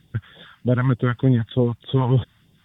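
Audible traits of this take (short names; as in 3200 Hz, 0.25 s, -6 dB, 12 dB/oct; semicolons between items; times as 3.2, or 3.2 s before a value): phasing stages 2, 3.3 Hz, lowest notch 370–1400 Hz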